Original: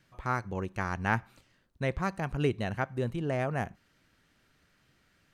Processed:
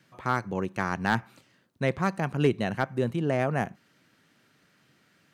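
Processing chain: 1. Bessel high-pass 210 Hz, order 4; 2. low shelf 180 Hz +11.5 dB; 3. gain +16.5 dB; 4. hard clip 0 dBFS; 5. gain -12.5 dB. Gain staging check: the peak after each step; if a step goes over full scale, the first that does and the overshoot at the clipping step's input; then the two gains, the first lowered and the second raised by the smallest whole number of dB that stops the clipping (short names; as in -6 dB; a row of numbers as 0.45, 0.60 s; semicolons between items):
-11.0, -10.0, +6.5, 0.0, -12.5 dBFS; step 3, 6.5 dB; step 3 +9.5 dB, step 5 -5.5 dB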